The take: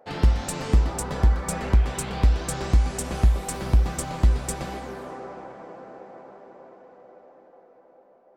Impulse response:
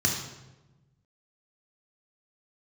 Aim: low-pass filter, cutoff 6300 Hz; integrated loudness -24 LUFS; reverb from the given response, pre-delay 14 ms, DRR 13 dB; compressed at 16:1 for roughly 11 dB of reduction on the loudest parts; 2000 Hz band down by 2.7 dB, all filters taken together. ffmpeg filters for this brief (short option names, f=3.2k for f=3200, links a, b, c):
-filter_complex "[0:a]lowpass=6.3k,equalizer=f=2k:t=o:g=-3.5,acompressor=threshold=-23dB:ratio=16,asplit=2[a][b];[1:a]atrim=start_sample=2205,adelay=14[c];[b][c]afir=irnorm=-1:irlink=0,volume=-23.5dB[d];[a][d]amix=inputs=2:normalize=0,volume=7dB"